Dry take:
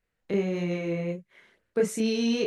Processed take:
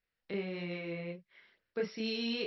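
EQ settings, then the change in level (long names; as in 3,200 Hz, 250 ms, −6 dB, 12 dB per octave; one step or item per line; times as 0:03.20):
linear-phase brick-wall low-pass 5,700 Hz
tilt shelving filter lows −5 dB, about 1,300 Hz
−6.5 dB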